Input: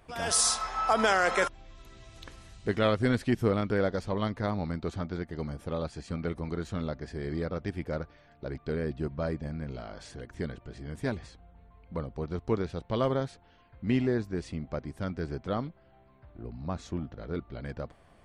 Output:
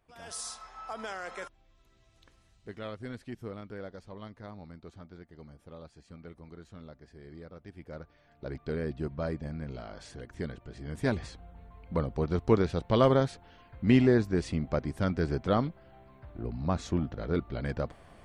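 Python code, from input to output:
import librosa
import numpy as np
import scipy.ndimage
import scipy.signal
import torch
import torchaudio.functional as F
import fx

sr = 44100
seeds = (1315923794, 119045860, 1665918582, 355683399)

y = fx.gain(x, sr, db=fx.line((7.64, -14.5), (8.48, -1.5), (10.73, -1.5), (11.23, 5.0)))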